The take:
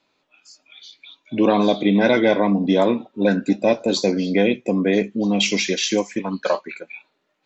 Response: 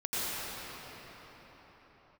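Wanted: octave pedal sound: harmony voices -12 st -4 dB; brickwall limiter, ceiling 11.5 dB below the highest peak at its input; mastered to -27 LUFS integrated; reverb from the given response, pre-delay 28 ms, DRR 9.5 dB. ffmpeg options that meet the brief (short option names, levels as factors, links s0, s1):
-filter_complex "[0:a]alimiter=limit=0.141:level=0:latency=1,asplit=2[s0][s1];[1:a]atrim=start_sample=2205,adelay=28[s2];[s1][s2]afir=irnorm=-1:irlink=0,volume=0.112[s3];[s0][s3]amix=inputs=2:normalize=0,asplit=2[s4][s5];[s5]asetrate=22050,aresample=44100,atempo=2,volume=0.631[s6];[s4][s6]amix=inputs=2:normalize=0,volume=0.794"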